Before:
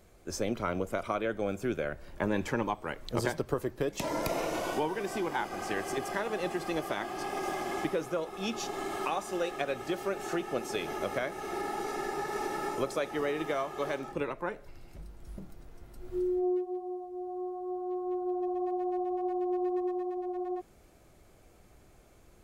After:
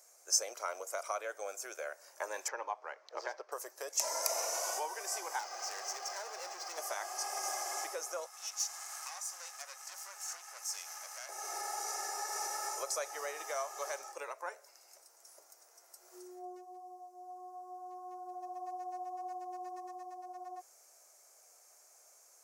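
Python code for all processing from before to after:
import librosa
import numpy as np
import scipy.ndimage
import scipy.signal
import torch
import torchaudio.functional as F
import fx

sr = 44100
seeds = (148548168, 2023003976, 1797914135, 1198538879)

y = fx.chain(x, sr, fx.median_filter(points=5),
    fx.highpass(hz=99.0, slope=12),
    fx.air_absorb(metres=230.0), at=(2.48, 3.52))
y = fx.chain(y, sr, fx.high_shelf_res(hz=7200.0, db=-12.5, q=1.5),
    fx.clip_hard(threshold_db=-34.5),
    fx.resample_linear(factor=2), at=(5.39, 6.78))
y = fx.chain(y, sr, fx.tube_stage(drive_db=34.0, bias=0.7),
    fx.highpass(hz=1100.0, slope=12), at=(8.26, 11.29))
y = scipy.signal.sosfilt(scipy.signal.cheby2(4, 50, 220.0, 'highpass', fs=sr, output='sos'), y)
y = fx.high_shelf_res(y, sr, hz=4500.0, db=9.5, q=3.0)
y = y * 10.0 ** (-3.5 / 20.0)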